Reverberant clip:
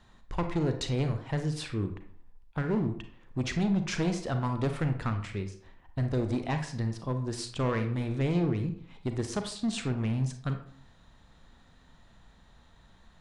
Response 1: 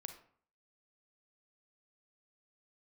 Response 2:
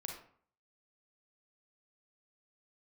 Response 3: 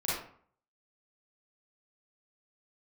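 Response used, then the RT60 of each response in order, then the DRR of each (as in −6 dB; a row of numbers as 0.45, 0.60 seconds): 1; 0.55, 0.55, 0.55 seconds; 7.0, 1.0, −9.0 decibels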